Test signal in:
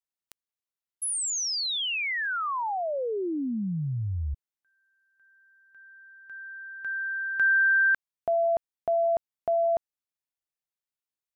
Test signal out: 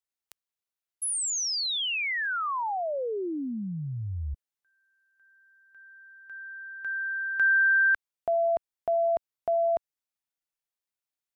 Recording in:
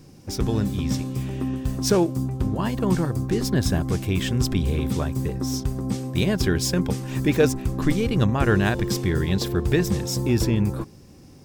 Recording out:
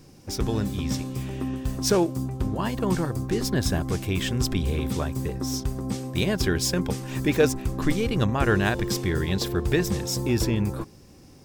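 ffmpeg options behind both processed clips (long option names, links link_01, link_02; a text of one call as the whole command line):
ffmpeg -i in.wav -af "equalizer=frequency=150:width_type=o:width=2.3:gain=-4" out.wav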